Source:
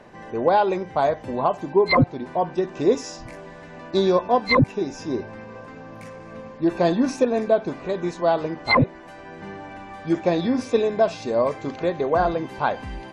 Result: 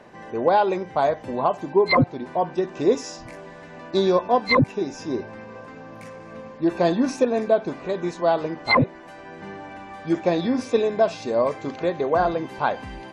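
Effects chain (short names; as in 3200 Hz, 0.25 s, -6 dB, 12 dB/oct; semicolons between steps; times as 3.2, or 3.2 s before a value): low shelf 80 Hz -8 dB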